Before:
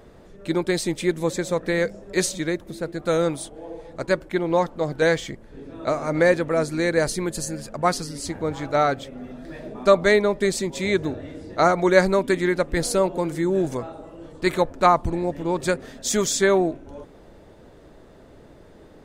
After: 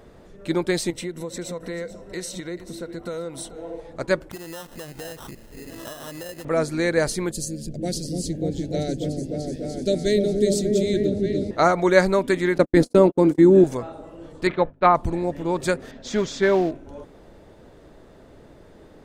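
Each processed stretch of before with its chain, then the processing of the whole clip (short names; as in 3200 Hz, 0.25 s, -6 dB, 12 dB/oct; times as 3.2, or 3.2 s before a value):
0.9–3.8 compressor 12:1, threshold -29 dBFS + ripple EQ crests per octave 2, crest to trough 8 dB + echo 0.437 s -15 dB
4.31–6.45 sample-rate reducer 2300 Hz + high shelf 5600 Hz +8 dB + compressor 8:1, threshold -33 dBFS
7.31–11.51 Butterworth band-stop 1100 Hz, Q 0.5 + bell 2300 Hz -7 dB 0.59 oct + repeats that get brighter 0.294 s, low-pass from 400 Hz, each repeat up 1 oct, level 0 dB
12.58–13.64 bell 270 Hz +14.5 dB 1.2 oct + gate -20 dBFS, range -59 dB
14.47–14.95 LPF 3400 Hz 24 dB/oct + expander -27 dBFS + notches 50/100/150/200/250 Hz
15.91–16.71 notch 1200 Hz, Q 13 + modulation noise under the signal 17 dB + air absorption 190 m
whole clip: dry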